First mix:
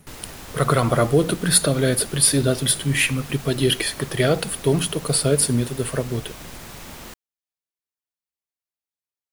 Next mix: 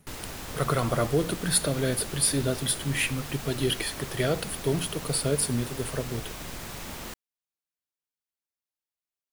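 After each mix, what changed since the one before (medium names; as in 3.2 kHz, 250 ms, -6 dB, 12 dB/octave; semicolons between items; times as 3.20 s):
speech -7.5 dB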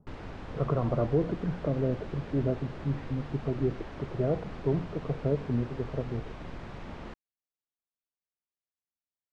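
speech: add low-pass 1.1 kHz 24 dB/octave; master: add tape spacing loss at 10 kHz 37 dB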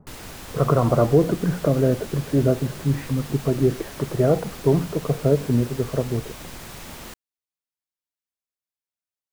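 speech +8.5 dB; master: remove tape spacing loss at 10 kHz 37 dB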